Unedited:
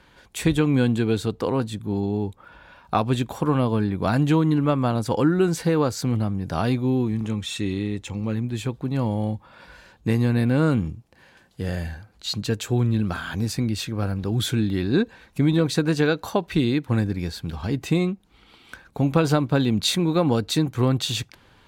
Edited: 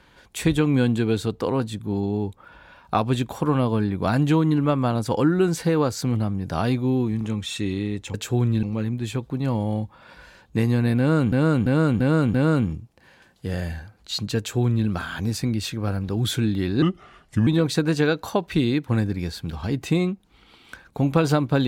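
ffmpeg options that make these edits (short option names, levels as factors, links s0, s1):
-filter_complex "[0:a]asplit=9[s0][s1][s2][s3][s4][s5][s6][s7][s8];[s0]atrim=end=8.142[s9];[s1]atrim=start=12.528:end=13.022[s10];[s2]atrim=start=8.138:end=10.832[s11];[s3]atrim=start=10.488:end=10.832[s12];[s4]atrim=start=10.488:end=10.832[s13];[s5]atrim=start=10.488:end=10.832[s14];[s6]atrim=start=10.488:end=14.974[s15];[s7]atrim=start=14.97:end=15.47,asetpts=PTS-STARTPTS,asetrate=33957,aresample=44100,atrim=end_sample=28636,asetpts=PTS-STARTPTS[s16];[s8]atrim=start=15.466[s17];[s9][s10]acrossfade=d=0.004:c1=hsin:c2=hsin[s18];[s18][s11]acrossfade=d=0.004:c1=hsin:c2=hsin[s19];[s19][s12]acrossfade=d=0.004:c1=hsin:c2=hsin[s20];[s20][s13]acrossfade=d=0.004:c1=hsin:c2=hsin[s21];[s21][s14]acrossfade=d=0.004:c1=hsin:c2=hsin[s22];[s22][s15]acrossfade=d=0.004:c1=hsin:c2=hsin[s23];[s23][s16]acrossfade=d=0.004:c1=hsin:c2=hsin[s24];[s24][s17]acrossfade=d=0.004:c1=hsin:c2=hsin"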